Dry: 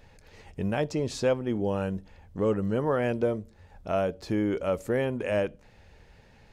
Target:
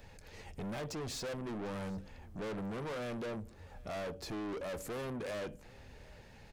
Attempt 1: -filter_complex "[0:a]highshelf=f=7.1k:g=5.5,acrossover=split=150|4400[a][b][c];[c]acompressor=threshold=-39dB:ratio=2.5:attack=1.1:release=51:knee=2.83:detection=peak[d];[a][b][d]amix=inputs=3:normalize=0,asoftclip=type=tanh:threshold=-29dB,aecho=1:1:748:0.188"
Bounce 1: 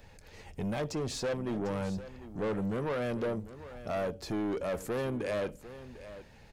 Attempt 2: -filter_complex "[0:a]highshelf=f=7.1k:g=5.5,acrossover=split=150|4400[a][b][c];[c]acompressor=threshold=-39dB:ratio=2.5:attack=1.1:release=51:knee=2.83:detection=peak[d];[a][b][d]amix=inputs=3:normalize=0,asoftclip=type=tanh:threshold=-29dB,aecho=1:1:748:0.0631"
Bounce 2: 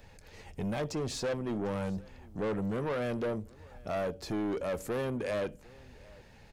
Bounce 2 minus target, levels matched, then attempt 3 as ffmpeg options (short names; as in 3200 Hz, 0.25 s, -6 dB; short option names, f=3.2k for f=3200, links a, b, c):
soft clip: distortion -4 dB
-filter_complex "[0:a]highshelf=f=7.1k:g=5.5,acrossover=split=150|4400[a][b][c];[c]acompressor=threshold=-39dB:ratio=2.5:attack=1.1:release=51:knee=2.83:detection=peak[d];[a][b][d]amix=inputs=3:normalize=0,asoftclip=type=tanh:threshold=-38dB,aecho=1:1:748:0.0631"